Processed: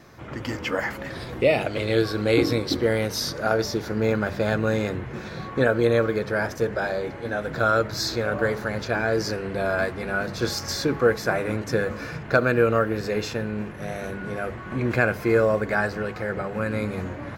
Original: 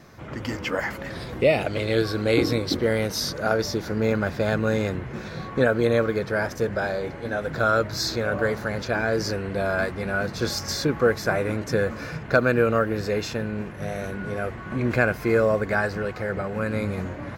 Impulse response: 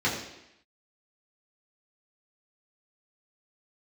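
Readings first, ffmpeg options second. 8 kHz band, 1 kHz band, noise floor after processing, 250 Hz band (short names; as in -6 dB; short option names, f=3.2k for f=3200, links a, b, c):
-0.5 dB, +0.5 dB, -36 dBFS, 0.0 dB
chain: -filter_complex "[0:a]bandreject=f=50:t=h:w=6,bandreject=f=100:t=h:w=6,bandreject=f=150:t=h:w=6,bandreject=f=200:t=h:w=6,asplit=2[a][b];[1:a]atrim=start_sample=2205,asetrate=79380,aresample=44100[c];[b][c]afir=irnorm=-1:irlink=0,volume=-22.5dB[d];[a][d]amix=inputs=2:normalize=0"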